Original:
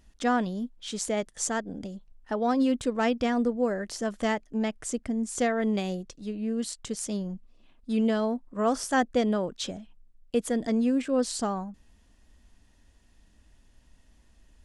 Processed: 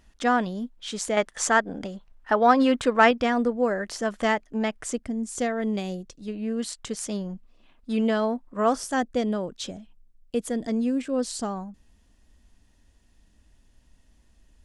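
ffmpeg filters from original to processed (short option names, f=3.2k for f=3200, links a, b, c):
-af "asetnsamples=n=441:p=0,asendcmd='1.17 equalizer g 13.5;3.11 equalizer g 6.5;4.98 equalizer g -1.5;6.28 equalizer g 5.5;8.75 equalizer g -2',equalizer=f=1.4k:t=o:w=2.9:g=5"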